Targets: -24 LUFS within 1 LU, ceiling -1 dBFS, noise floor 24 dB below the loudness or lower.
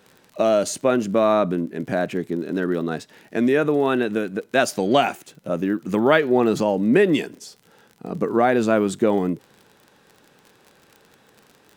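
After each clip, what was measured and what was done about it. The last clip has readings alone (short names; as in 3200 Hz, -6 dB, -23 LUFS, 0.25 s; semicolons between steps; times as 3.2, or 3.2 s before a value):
ticks 41/s; loudness -21.0 LUFS; peak -2.5 dBFS; loudness target -24.0 LUFS
-> de-click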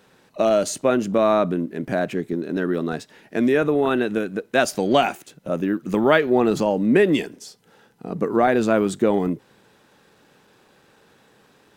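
ticks 1.4/s; loudness -21.0 LUFS; peak -2.5 dBFS; loudness target -24.0 LUFS
-> gain -3 dB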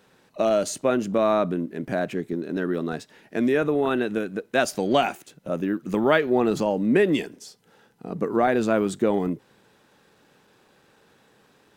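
loudness -24.0 LUFS; peak -5.5 dBFS; noise floor -60 dBFS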